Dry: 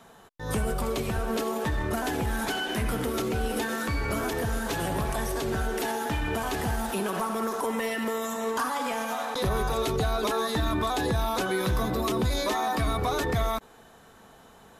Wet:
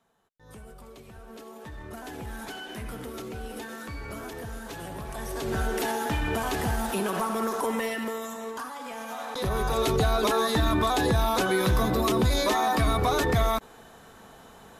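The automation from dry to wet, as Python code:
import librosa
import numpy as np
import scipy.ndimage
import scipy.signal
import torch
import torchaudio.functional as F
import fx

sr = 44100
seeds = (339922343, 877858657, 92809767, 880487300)

y = fx.gain(x, sr, db=fx.line((1.07, -18.5), (2.29, -9.0), (5.04, -9.0), (5.6, 1.0), (7.74, 1.0), (8.76, -9.5), (9.89, 3.0)))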